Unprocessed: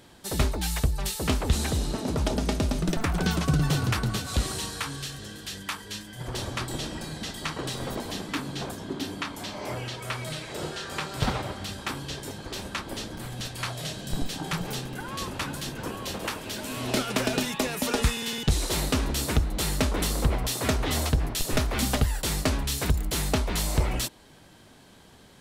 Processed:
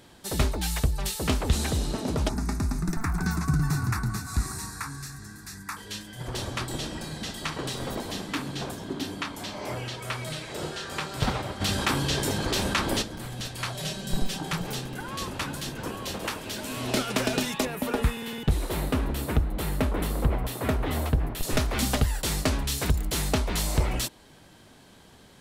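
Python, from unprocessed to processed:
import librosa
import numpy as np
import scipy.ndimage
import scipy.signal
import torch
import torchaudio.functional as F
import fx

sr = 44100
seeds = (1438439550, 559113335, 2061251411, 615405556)

y = fx.fixed_phaser(x, sr, hz=1300.0, stages=4, at=(2.29, 5.77))
y = fx.echo_feedback(y, sr, ms=66, feedback_pct=57, wet_db=-17.0, at=(7.03, 9.05), fade=0.02)
y = fx.env_flatten(y, sr, amount_pct=50, at=(11.6, 13.01), fade=0.02)
y = fx.comb(y, sr, ms=5.2, depth=0.68, at=(13.74, 14.39))
y = fx.peak_eq(y, sr, hz=5900.0, db=-14.0, octaves=1.7, at=(17.65, 21.43))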